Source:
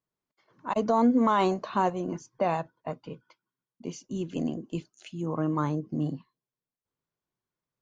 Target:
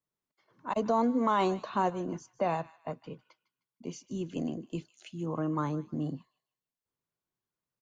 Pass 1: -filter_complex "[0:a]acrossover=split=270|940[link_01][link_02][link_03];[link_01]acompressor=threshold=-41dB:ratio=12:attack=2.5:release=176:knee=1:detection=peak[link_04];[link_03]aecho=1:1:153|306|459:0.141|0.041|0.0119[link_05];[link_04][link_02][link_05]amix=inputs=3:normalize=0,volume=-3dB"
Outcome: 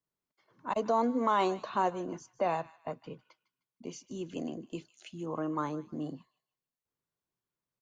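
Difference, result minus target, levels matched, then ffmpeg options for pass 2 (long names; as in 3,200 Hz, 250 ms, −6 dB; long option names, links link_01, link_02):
downward compressor: peak gain reduction +10.5 dB
-filter_complex "[0:a]acrossover=split=270|940[link_01][link_02][link_03];[link_01]acompressor=threshold=-29.5dB:ratio=12:attack=2.5:release=176:knee=1:detection=peak[link_04];[link_03]aecho=1:1:153|306|459:0.141|0.041|0.0119[link_05];[link_04][link_02][link_05]amix=inputs=3:normalize=0,volume=-3dB"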